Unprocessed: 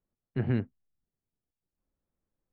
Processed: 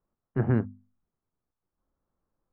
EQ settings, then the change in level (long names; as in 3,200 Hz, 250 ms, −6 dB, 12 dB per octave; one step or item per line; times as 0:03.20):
low-pass with resonance 1,200 Hz, resonance Q 2
mains-hum notches 50/100/150/200/250 Hz
+4.0 dB